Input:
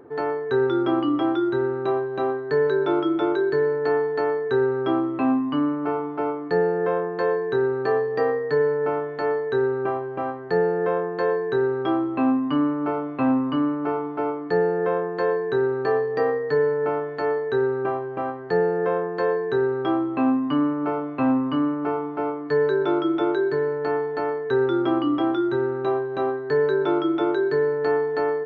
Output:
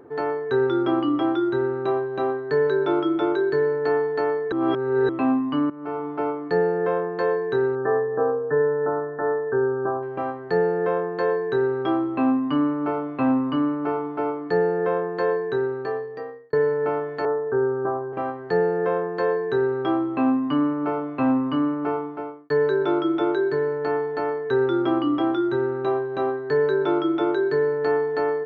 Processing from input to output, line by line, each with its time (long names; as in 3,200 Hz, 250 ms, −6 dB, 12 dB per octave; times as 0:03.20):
0:04.52–0:05.09: reverse
0:05.70–0:06.10: fade in, from −17 dB
0:07.75–0:10.03: linear-phase brick-wall low-pass 1,800 Hz
0:15.34–0:16.53: fade out
0:17.25–0:18.13: Butterworth low-pass 1,600 Hz 48 dB per octave
0:21.95–0:22.50: fade out